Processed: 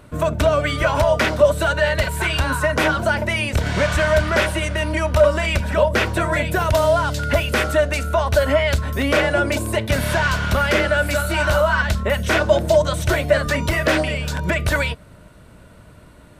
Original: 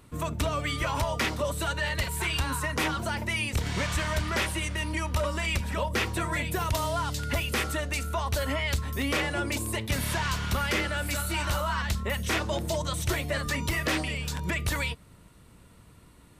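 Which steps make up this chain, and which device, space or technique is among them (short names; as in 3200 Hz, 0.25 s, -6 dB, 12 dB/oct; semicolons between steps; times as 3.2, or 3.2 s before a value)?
inside a helmet (high shelf 4300 Hz -6.5 dB; small resonant body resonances 610/1500 Hz, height 11 dB, ringing for 35 ms); gain +8.5 dB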